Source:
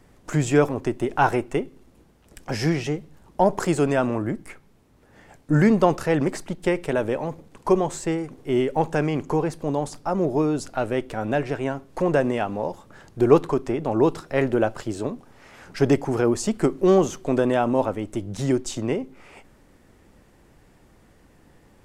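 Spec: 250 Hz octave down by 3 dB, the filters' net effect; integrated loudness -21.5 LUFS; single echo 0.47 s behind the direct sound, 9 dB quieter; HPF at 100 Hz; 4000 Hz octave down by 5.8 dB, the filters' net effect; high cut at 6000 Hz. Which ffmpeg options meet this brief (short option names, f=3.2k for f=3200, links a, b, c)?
-af "highpass=100,lowpass=6k,equalizer=f=250:t=o:g=-4,equalizer=f=4k:t=o:g=-7.5,aecho=1:1:470:0.355,volume=3.5dB"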